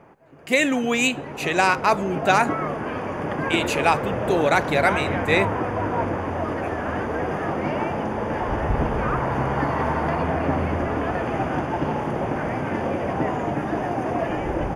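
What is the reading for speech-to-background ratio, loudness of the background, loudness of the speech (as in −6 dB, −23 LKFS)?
3.5 dB, −25.5 LKFS, −22.0 LKFS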